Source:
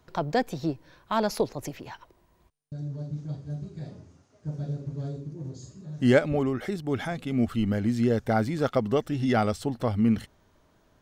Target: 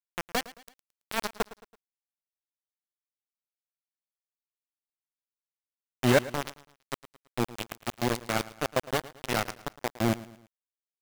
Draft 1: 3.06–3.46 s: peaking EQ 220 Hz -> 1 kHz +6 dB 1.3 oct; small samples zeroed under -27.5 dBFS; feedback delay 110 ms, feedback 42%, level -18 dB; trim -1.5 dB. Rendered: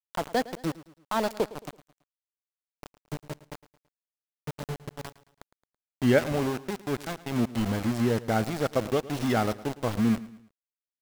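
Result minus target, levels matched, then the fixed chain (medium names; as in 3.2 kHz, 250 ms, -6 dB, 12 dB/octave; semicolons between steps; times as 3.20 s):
small samples zeroed: distortion -11 dB
3.06–3.46 s: peaking EQ 220 Hz -> 1 kHz +6 dB 1.3 oct; small samples zeroed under -18 dBFS; feedback delay 110 ms, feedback 42%, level -18 dB; trim -1.5 dB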